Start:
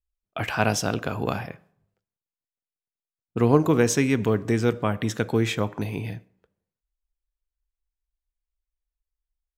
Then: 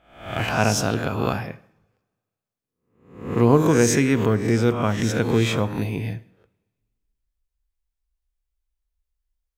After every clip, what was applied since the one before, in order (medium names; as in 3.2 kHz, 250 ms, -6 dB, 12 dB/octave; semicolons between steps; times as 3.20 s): reverse spectral sustain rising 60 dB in 0.58 s; bass shelf 180 Hz +4.5 dB; two-slope reverb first 0.57 s, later 1.7 s, from -21 dB, DRR 15 dB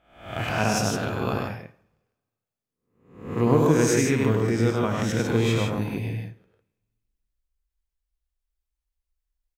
loudspeakers at several distances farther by 34 m -4 dB, 52 m -5 dB; trim -5 dB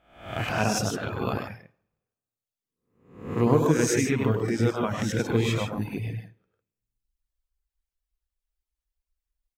reverb removal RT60 0.95 s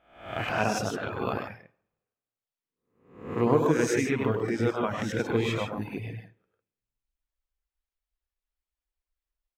tone controls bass -6 dB, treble -8 dB